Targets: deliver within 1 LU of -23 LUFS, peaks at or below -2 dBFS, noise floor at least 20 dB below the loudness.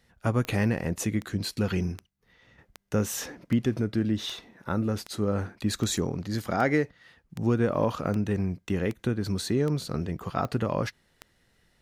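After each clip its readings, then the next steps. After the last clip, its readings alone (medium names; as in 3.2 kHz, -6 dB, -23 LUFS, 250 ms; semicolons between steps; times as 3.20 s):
clicks found 15; loudness -29.0 LUFS; peak level -11.0 dBFS; loudness target -23.0 LUFS
-> de-click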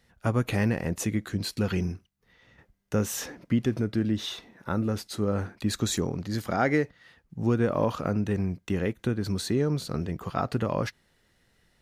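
clicks found 0; loudness -29.0 LUFS; peak level -11.0 dBFS; loudness target -23.0 LUFS
-> trim +6 dB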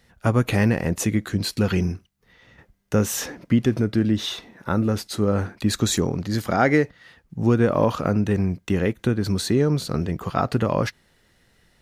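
loudness -23.0 LUFS; peak level -5.0 dBFS; noise floor -62 dBFS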